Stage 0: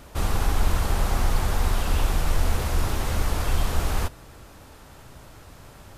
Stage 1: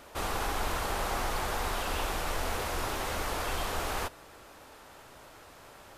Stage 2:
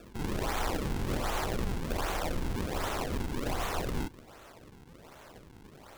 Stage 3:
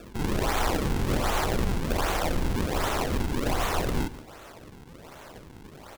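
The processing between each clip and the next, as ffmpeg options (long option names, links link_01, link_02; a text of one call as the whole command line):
ffmpeg -i in.wav -af "bass=frequency=250:gain=-14,treble=frequency=4000:gain=-3,volume=-1dB" out.wav
ffmpeg -i in.wav -af "acrusher=samples=42:mix=1:aa=0.000001:lfo=1:lforange=67.2:lforate=1.3" out.wav
ffmpeg -i in.wav -af "aecho=1:1:143:0.15,volume=6dB" out.wav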